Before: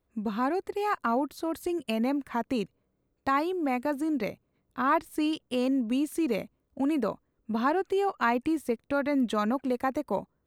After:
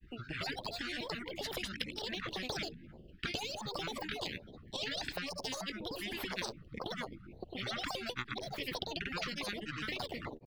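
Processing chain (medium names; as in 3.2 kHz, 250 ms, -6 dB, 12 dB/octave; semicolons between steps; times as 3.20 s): pitch shift switched off and on +5.5 st, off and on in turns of 364 ms; Chebyshev band-stop 620–2200 Hz, order 5; tilt shelf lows -4 dB, about 1.3 kHz; hum notches 50/100/150/200/250/300/350 Hz; comb 0.8 ms, depth 73%; compression, threshold -33 dBFS, peak gain reduction 8 dB; granulator, pitch spread up and down by 12 st; distance through air 410 m; spectrum-flattening compressor 4:1; trim +7.5 dB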